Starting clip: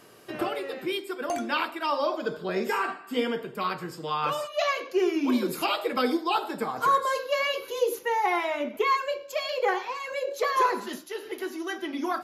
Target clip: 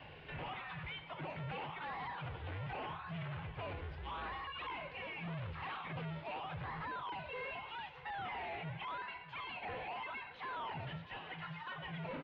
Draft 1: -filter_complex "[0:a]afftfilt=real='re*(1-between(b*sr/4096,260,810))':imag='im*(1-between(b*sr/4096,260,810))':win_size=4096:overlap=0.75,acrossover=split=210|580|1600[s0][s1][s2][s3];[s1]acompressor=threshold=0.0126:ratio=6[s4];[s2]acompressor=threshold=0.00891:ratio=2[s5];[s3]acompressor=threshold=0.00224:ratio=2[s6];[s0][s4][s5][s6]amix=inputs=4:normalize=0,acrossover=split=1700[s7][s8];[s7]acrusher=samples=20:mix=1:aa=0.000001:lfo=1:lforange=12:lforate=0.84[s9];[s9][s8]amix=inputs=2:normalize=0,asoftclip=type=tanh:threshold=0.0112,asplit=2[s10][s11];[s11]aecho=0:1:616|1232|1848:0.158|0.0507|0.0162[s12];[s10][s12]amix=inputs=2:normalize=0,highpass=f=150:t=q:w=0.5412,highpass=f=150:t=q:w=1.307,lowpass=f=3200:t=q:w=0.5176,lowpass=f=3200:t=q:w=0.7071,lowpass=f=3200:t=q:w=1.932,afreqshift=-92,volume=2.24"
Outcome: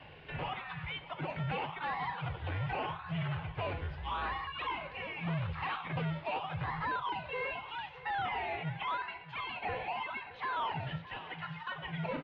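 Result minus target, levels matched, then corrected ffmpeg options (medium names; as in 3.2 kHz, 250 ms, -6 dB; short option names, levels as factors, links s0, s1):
saturation: distortion -4 dB
-filter_complex "[0:a]afftfilt=real='re*(1-between(b*sr/4096,260,810))':imag='im*(1-between(b*sr/4096,260,810))':win_size=4096:overlap=0.75,acrossover=split=210|580|1600[s0][s1][s2][s3];[s1]acompressor=threshold=0.0126:ratio=6[s4];[s2]acompressor=threshold=0.00891:ratio=2[s5];[s3]acompressor=threshold=0.00224:ratio=2[s6];[s0][s4][s5][s6]amix=inputs=4:normalize=0,acrossover=split=1700[s7][s8];[s7]acrusher=samples=20:mix=1:aa=0.000001:lfo=1:lforange=12:lforate=0.84[s9];[s9][s8]amix=inputs=2:normalize=0,asoftclip=type=tanh:threshold=0.00398,asplit=2[s10][s11];[s11]aecho=0:1:616|1232|1848:0.158|0.0507|0.0162[s12];[s10][s12]amix=inputs=2:normalize=0,highpass=f=150:t=q:w=0.5412,highpass=f=150:t=q:w=1.307,lowpass=f=3200:t=q:w=0.5176,lowpass=f=3200:t=q:w=0.7071,lowpass=f=3200:t=q:w=1.932,afreqshift=-92,volume=2.24"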